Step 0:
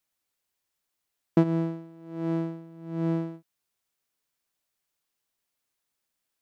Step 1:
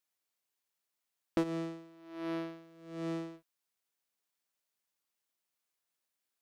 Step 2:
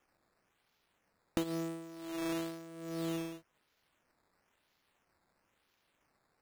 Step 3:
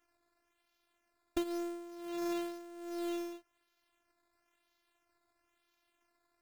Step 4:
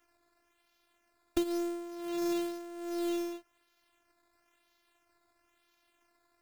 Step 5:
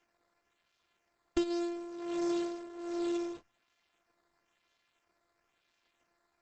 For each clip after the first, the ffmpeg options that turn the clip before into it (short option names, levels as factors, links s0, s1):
-af "aeval=exprs='max(val(0),0)':c=same,highpass=f=220:p=1"
-af "acompressor=threshold=0.00282:ratio=2,acrusher=samples=10:mix=1:aa=0.000001:lfo=1:lforange=10:lforate=1,volume=2.99"
-af "afftfilt=real='hypot(re,im)*cos(PI*b)':imag='0':win_size=512:overlap=0.75,volume=1.19"
-filter_complex "[0:a]acrossover=split=480|3000[s0][s1][s2];[s1]acompressor=threshold=0.00355:ratio=2.5[s3];[s0][s3][s2]amix=inputs=3:normalize=0,volume=1.88"
-ar 48000 -c:a libopus -b:a 10k